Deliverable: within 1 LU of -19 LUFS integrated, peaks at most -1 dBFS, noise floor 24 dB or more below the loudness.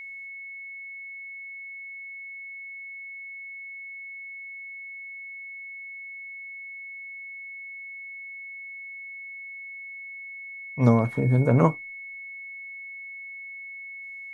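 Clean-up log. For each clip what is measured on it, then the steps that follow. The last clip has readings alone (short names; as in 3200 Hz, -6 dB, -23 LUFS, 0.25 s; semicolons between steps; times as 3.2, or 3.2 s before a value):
steady tone 2200 Hz; tone level -37 dBFS; loudness -31.5 LUFS; peak -5.5 dBFS; loudness target -19.0 LUFS
-> notch 2200 Hz, Q 30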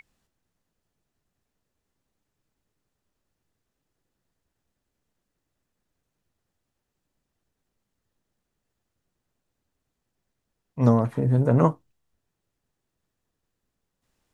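steady tone none; loudness -22.0 LUFS; peak -5.5 dBFS; loudness target -19.0 LUFS
-> gain +3 dB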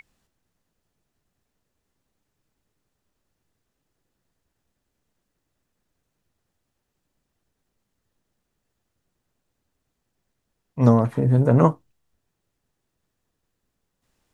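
loudness -19.0 LUFS; peak -2.5 dBFS; noise floor -79 dBFS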